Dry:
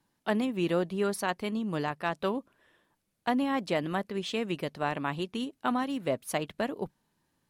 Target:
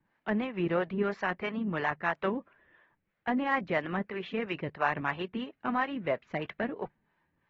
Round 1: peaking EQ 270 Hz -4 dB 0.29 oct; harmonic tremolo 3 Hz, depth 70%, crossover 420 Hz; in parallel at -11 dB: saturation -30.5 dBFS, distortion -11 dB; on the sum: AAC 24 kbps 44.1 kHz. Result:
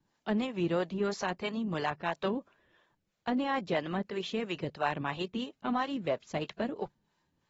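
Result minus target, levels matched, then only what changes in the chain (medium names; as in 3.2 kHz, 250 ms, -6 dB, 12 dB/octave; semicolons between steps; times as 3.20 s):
2 kHz band -4.0 dB
add first: resonant low-pass 2 kHz, resonance Q 2.2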